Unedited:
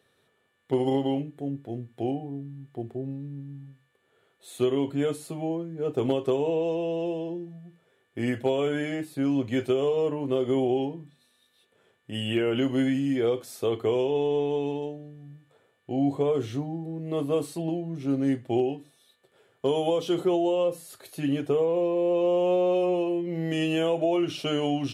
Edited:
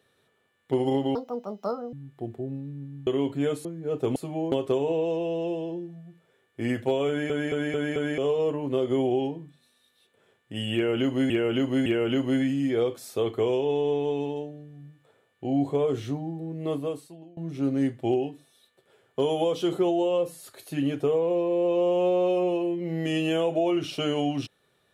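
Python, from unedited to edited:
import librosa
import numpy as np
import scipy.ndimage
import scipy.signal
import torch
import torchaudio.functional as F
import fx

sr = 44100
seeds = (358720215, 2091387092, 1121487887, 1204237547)

y = fx.edit(x, sr, fx.speed_span(start_s=1.15, length_s=1.34, speed=1.72),
    fx.cut(start_s=3.63, length_s=1.02),
    fx.move(start_s=5.23, length_s=0.36, to_s=6.1),
    fx.stutter_over(start_s=8.66, slice_s=0.22, count=5),
    fx.repeat(start_s=12.32, length_s=0.56, count=3),
    fx.fade_out_to(start_s=17.16, length_s=0.67, curve='qua', floor_db=-21.5), tone=tone)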